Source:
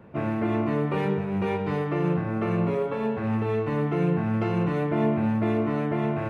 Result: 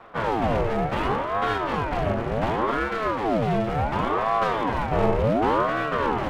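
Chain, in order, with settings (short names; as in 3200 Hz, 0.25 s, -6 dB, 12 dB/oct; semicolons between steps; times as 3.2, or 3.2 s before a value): minimum comb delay 8.8 ms; ring modulator with a swept carrier 570 Hz, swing 60%, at 0.69 Hz; gain +6 dB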